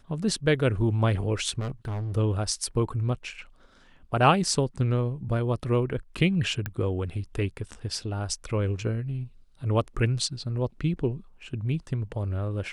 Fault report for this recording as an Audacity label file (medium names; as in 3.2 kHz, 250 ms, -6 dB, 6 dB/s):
1.590000	2.170000	clipped -28.5 dBFS
6.660000	6.660000	pop -17 dBFS